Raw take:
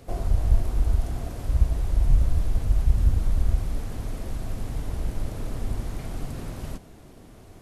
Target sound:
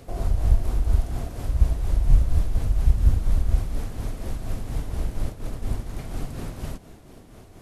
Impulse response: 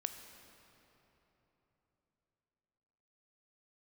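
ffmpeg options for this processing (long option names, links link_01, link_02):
-filter_complex "[0:a]asplit=3[link_01][link_02][link_03];[link_01]afade=type=out:start_time=5.28:duration=0.02[link_04];[link_02]agate=range=-33dB:threshold=-25dB:ratio=3:detection=peak,afade=type=in:start_time=5.28:duration=0.02,afade=type=out:start_time=5.97:duration=0.02[link_05];[link_03]afade=type=in:start_time=5.97:duration=0.02[link_06];[link_04][link_05][link_06]amix=inputs=3:normalize=0,tremolo=f=4.2:d=0.45,volume=3dB"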